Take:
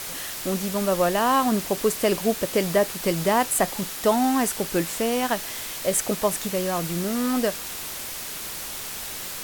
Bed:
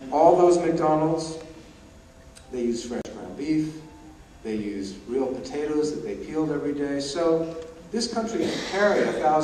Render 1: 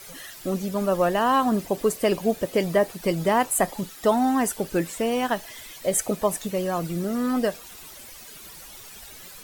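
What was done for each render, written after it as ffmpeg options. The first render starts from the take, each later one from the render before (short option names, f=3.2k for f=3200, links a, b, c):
-af "afftdn=nr=13:nf=-34"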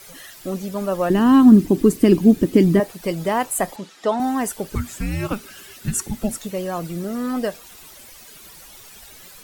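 -filter_complex "[0:a]asettb=1/sr,asplit=3[a][b][c];[a]atrim=end=1.104[d];[b]atrim=start=1.1:end=2.8,asetpts=PTS-STARTPTS,afade=t=in:d=0.004:c=qsin,afade=t=out:st=1.696:d=0.004:c=qsin,lowshelf=f=420:t=q:w=3:g=10.5[e];[c]atrim=start=2.796[f];[d][e]acrossfade=d=0.004:c1=hsin:c2=qsin[g];[g][f]acrossfade=d=0.004:c1=qsin:c2=hsin,asettb=1/sr,asplit=3[h][i][j];[h]atrim=end=3.764[k];[i]atrim=start=3.76:end=4.2,asetpts=PTS-STARTPTS,afade=t=in:d=0.004:c=qsin,afade=t=out:st=0.436:d=0.004:c=qsin,highpass=220,lowpass=5.8k[l];[j]atrim=start=4.196[m];[k][l]acrossfade=d=0.004:c1=hsin:c2=qsin[n];[n][m]acrossfade=d=0.004:c1=qsin:c2=hsin,asettb=1/sr,asplit=3[o][p][q];[o]atrim=end=4.754[r];[p]atrim=start=4.75:end=6.38,asetpts=PTS-STARTPTS,afade=t=in:d=0.004:c=qsin,afade=t=out:st=1.626:d=0.004:c=qsin,afreqshift=-410[s];[q]atrim=start=6.376[t];[r][s]acrossfade=d=0.004:c1=hsin:c2=qsin[u];[u][t]acrossfade=d=0.004:c1=qsin:c2=hsin"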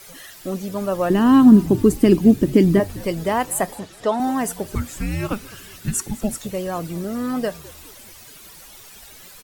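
-filter_complex "[0:a]asplit=5[a][b][c][d][e];[b]adelay=208,afreqshift=-86,volume=-20dB[f];[c]adelay=416,afreqshift=-172,volume=-25.4dB[g];[d]adelay=624,afreqshift=-258,volume=-30.7dB[h];[e]adelay=832,afreqshift=-344,volume=-36.1dB[i];[a][f][g][h][i]amix=inputs=5:normalize=0"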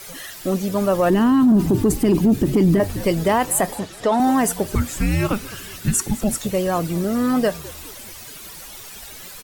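-af "acontrast=35,alimiter=limit=-9.5dB:level=0:latency=1:release=18"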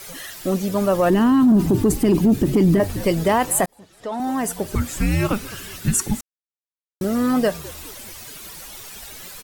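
-filter_complex "[0:a]asplit=4[a][b][c][d];[a]atrim=end=3.66,asetpts=PTS-STARTPTS,afade=t=out:st=3.656:d=0.004:c=hsin[e];[b]atrim=start=3.66:end=6.21,asetpts=PTS-STARTPTS,afade=t=in:d=1.36,afade=t=out:st=2.546:d=0.004:c=hsin[f];[c]atrim=start=6.21:end=7.01,asetpts=PTS-STARTPTS,volume=0[g];[d]atrim=start=7.01,asetpts=PTS-STARTPTS,afade=t=in:d=0.004:c=hsin[h];[e][f][g][h]concat=n=4:v=0:a=1"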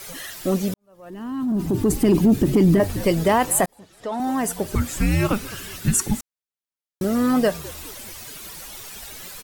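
-filter_complex "[0:a]asplit=2[a][b];[a]atrim=end=0.74,asetpts=PTS-STARTPTS,afade=t=out:st=0.736:d=0.004:c=hsin[c];[b]atrim=start=0.74,asetpts=PTS-STARTPTS,afade=t=in:d=1.27:c=qua[d];[c][d]concat=n=2:v=0:a=1"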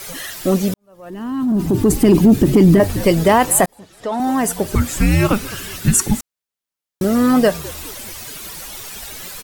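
-af "volume=5.5dB"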